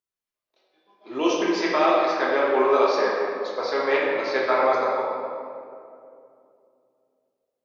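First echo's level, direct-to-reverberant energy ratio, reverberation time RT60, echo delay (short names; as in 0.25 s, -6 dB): none, -5.5 dB, 2.6 s, none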